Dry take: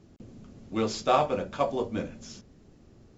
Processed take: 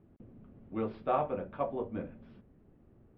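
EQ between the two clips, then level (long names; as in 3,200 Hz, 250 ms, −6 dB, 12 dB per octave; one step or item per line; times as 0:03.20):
Gaussian smoothing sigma 3.8 samples
−6.0 dB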